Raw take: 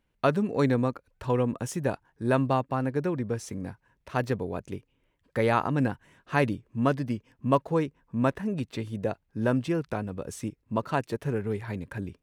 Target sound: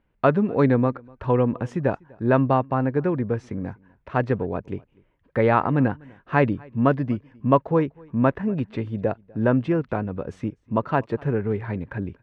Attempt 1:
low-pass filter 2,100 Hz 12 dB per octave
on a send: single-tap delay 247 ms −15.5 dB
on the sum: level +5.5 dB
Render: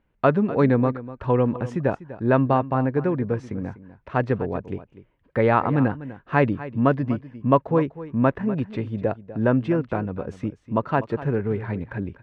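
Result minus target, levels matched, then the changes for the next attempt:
echo-to-direct +11 dB
change: single-tap delay 247 ms −26.5 dB

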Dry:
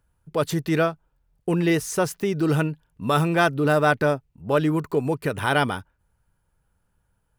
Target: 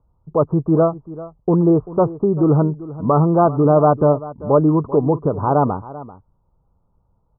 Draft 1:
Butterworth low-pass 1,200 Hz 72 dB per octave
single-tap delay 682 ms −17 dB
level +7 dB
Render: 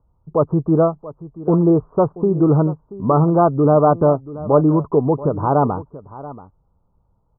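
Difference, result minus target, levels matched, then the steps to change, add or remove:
echo 292 ms late
change: single-tap delay 390 ms −17 dB

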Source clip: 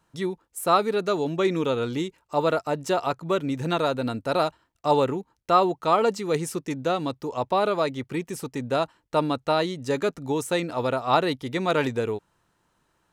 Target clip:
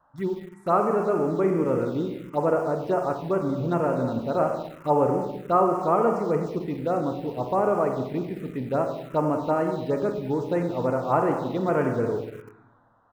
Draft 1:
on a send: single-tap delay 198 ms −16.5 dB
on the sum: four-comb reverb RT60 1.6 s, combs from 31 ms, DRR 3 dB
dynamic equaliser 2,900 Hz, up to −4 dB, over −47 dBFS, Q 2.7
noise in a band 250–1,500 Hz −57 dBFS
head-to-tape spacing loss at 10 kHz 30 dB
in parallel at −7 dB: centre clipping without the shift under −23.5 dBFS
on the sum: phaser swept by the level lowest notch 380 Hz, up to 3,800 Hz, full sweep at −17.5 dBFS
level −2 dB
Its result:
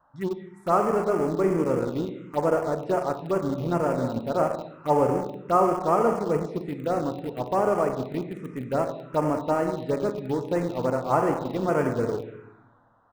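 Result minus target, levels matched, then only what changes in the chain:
centre clipping without the shift: distortion +13 dB
change: centre clipping without the shift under −33.5 dBFS

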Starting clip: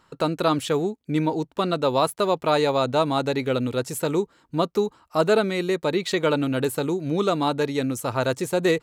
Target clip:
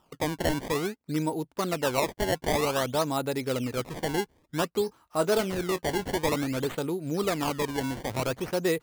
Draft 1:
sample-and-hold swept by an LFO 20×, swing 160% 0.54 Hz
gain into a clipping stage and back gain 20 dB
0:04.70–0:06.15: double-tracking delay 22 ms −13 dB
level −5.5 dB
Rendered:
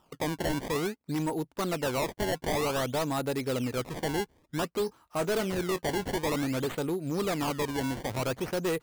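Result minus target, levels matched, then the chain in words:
gain into a clipping stage and back: distortion +22 dB
sample-and-hold swept by an LFO 20×, swing 160% 0.54 Hz
gain into a clipping stage and back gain 10.5 dB
0:04.70–0:06.15: double-tracking delay 22 ms −13 dB
level −5.5 dB

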